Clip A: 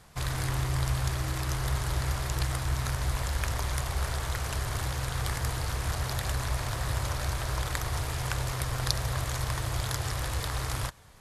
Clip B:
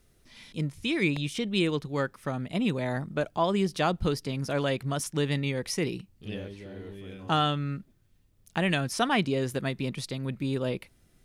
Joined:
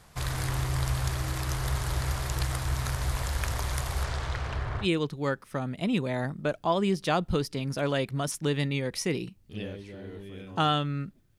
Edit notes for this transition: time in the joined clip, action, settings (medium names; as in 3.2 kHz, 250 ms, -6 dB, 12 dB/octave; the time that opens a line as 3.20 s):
clip A
4.03–4.88 s: low-pass 7.3 kHz -> 1.6 kHz
4.84 s: go over to clip B from 1.56 s, crossfade 0.08 s